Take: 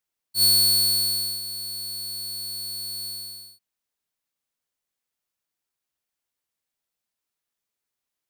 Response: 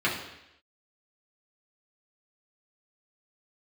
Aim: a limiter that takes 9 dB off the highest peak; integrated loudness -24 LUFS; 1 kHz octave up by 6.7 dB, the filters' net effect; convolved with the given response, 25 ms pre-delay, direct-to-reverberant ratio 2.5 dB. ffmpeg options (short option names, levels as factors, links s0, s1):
-filter_complex "[0:a]equalizer=f=1000:t=o:g=8.5,alimiter=limit=0.1:level=0:latency=1,asplit=2[s0][s1];[1:a]atrim=start_sample=2205,adelay=25[s2];[s1][s2]afir=irnorm=-1:irlink=0,volume=0.168[s3];[s0][s3]amix=inputs=2:normalize=0,volume=0.841"